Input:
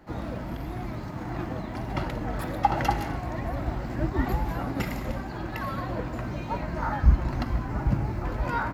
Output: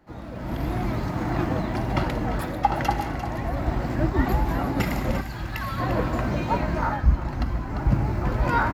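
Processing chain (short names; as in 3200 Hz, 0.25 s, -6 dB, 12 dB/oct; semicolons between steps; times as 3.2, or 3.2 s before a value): echo 0.347 s -11 dB; AGC gain up to 13.5 dB; 5.21–5.8 bell 430 Hz -11 dB 2.9 oct; gain -6 dB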